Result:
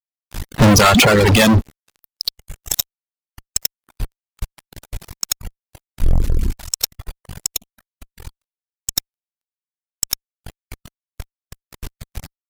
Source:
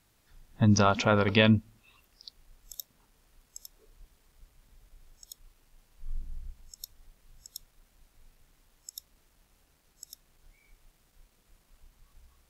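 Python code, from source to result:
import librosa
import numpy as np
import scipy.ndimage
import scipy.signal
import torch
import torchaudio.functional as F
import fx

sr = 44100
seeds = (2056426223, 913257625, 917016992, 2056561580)

y = fx.fuzz(x, sr, gain_db=43.0, gate_db=-52.0)
y = fx.env_flanger(y, sr, rest_ms=9.1, full_db=-28.5, at=(7.53, 8.94), fade=0.02)
y = fx.dereverb_blind(y, sr, rt60_s=1.9)
y = F.gain(torch.from_numpy(y), 5.5).numpy()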